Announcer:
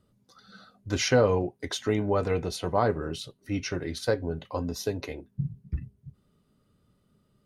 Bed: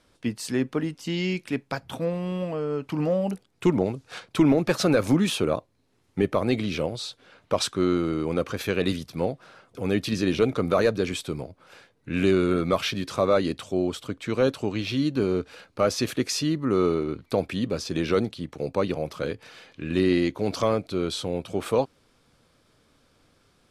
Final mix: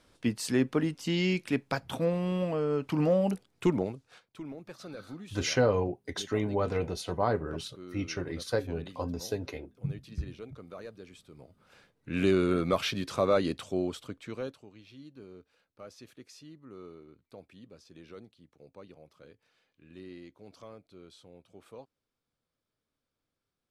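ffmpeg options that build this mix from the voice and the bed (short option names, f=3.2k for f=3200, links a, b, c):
-filter_complex "[0:a]adelay=4450,volume=-3.5dB[a];[1:a]volume=18dB,afade=t=out:st=3.35:d=0.88:silence=0.0794328,afade=t=in:st=11.3:d=0.97:silence=0.112202,afade=t=out:st=13.62:d=1.03:silence=0.0891251[b];[a][b]amix=inputs=2:normalize=0"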